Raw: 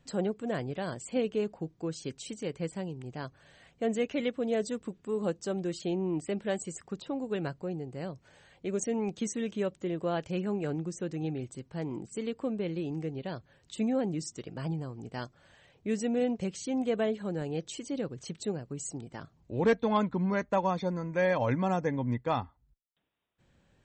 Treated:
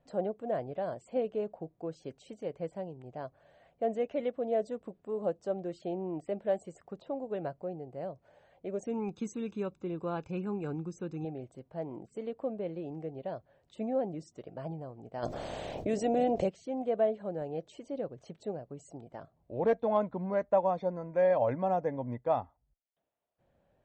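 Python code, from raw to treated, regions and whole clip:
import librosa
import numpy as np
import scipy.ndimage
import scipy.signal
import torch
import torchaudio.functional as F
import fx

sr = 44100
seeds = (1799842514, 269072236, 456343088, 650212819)

y = fx.chain(x, sr, fx.high_shelf(hz=4600.0, db=6.0),
    fx.comb(ms=0.8, depth=0.85), at=(8.86, 11.25))
y = fx.spec_clip(y, sr, under_db=14, at=(15.22, 16.48), fade=0.02)
y = fx.peak_eq(y, sr, hz=1400.0, db=-11.5, octaves=2.6, at=(15.22, 16.48), fade=0.02)
y = fx.env_flatten(y, sr, amount_pct=70, at=(15.22, 16.48), fade=0.02)
y = fx.lowpass(y, sr, hz=2000.0, slope=6)
y = fx.peak_eq(y, sr, hz=640.0, db=14.0, octaves=0.88)
y = F.gain(torch.from_numpy(y), -8.0).numpy()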